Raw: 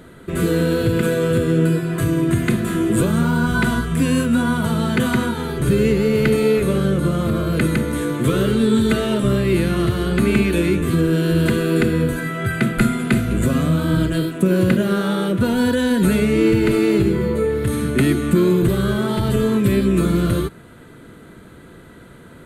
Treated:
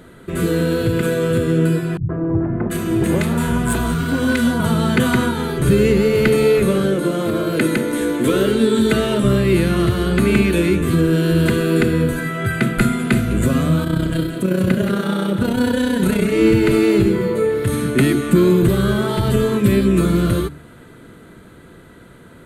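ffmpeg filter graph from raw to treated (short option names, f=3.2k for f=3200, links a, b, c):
-filter_complex "[0:a]asettb=1/sr,asplit=3[a][b][c];[a]atrim=end=1.974[d];[b]atrim=start=1.97:end=4.6,asetpts=PTS-STARTPTS,afade=t=in:d=0.004:c=qsin,afade=t=out:st=2.626:d=0.004:c=qsin,volume=12.5dB,asoftclip=hard,volume=-12.5dB,acrossover=split=190|1300[e][f][g];[f]adelay=120[h];[g]adelay=730[i];[e][h][i]amix=inputs=3:normalize=0,atrim=end_sample=115983[j];[c]atrim=start=4.596[k];[d][j]acrossfade=d=0.004:c1=hsin:c2=qsin[l];[l][k]acrossfade=d=0.004:c1=qsin:c2=hsin,asettb=1/sr,asplit=3[m][n][o];[m]atrim=end=6.834[p];[n]atrim=start=6.83:end=8.93,asetpts=PTS-STARTPTS,afade=t=in:d=0.004:c=qsin,afade=t=out:st=2.096:d=0.004:c=qsin,lowshelf=f=200:t=q:w=1.5:g=-7,bandreject=f=1.2k:w=10[q];[o]atrim=start=8.926[r];[p][q]acrossfade=d=0.004:c1=hsin:c2=qsin[s];[s][r]acrossfade=d=0.004:c1=qsin:c2=hsin,asettb=1/sr,asplit=3[t][u][v];[t]atrim=end=13.844[w];[u]atrim=start=13.84:end=16.33,asetpts=PTS-STARTPTS,afade=t=in:d=0.004:c=qsin,afade=t=out:st=2.486:d=0.004:c=qsin,tremolo=f=31:d=0.71,aecho=1:1:178:0.422,atrim=end_sample=109809[x];[v]atrim=start=16.326[y];[w][x]acrossfade=d=0.004:c1=hsin:c2=qsin[z];[z][y]acrossfade=d=0.004:c1=qsin:c2=hsin,bandreject=f=72.59:t=h:w=4,bandreject=f=145.18:t=h:w=4,bandreject=f=217.77:t=h:w=4,bandreject=f=290.36:t=h:w=4,dynaudnorm=f=280:g=17:m=5dB"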